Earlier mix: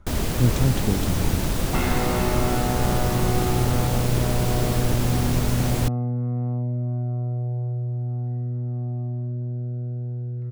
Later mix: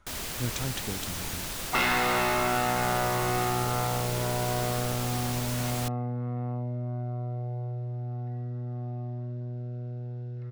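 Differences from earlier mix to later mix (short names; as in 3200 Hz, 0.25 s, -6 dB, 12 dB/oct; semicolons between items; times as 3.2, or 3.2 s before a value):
speech -6.0 dB; first sound -10.5 dB; master: add tilt shelf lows -8 dB, about 680 Hz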